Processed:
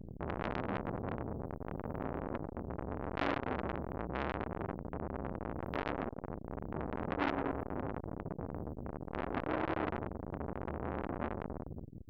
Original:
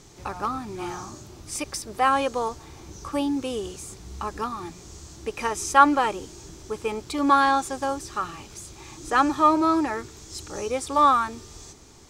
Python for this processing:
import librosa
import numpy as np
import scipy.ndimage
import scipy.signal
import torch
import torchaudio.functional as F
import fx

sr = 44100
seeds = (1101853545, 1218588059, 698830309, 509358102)

y = fx.spec_steps(x, sr, hold_ms=200)
y = scipy.signal.sosfilt(scipy.signal.cheby2(4, 70, [790.0, 9300.0], 'bandstop', fs=sr, output='sos'), y)
y = fx.hum_notches(y, sr, base_hz=60, count=5)
y = fx.dispersion(y, sr, late='highs', ms=63.0, hz=510.0)
y = fx.transformer_sat(y, sr, knee_hz=1700.0)
y = F.gain(torch.from_numpy(y), 17.0).numpy()